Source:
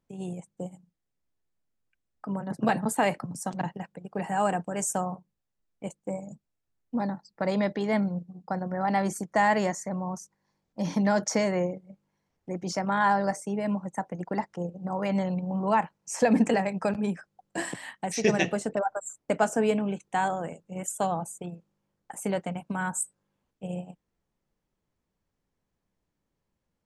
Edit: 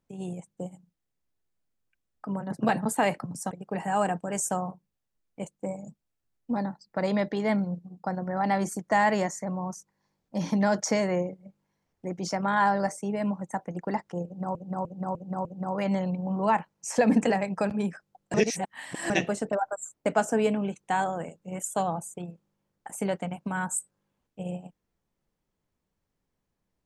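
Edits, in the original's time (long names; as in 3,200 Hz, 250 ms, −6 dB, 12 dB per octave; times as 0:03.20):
0:03.51–0:03.95: remove
0:14.69–0:14.99: repeat, 5 plays
0:17.58–0:18.34: reverse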